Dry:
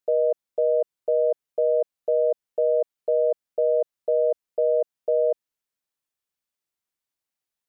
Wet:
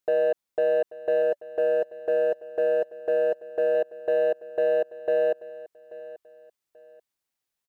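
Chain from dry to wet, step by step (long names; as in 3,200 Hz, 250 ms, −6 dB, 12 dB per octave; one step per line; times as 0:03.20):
brickwall limiter −21.5 dBFS, peak gain reduction 7 dB
0:01.22–0:03.75: notch filter 580 Hz, Q 12
leveller curve on the samples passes 1
repeating echo 835 ms, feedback 28%, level −18 dB
level +4.5 dB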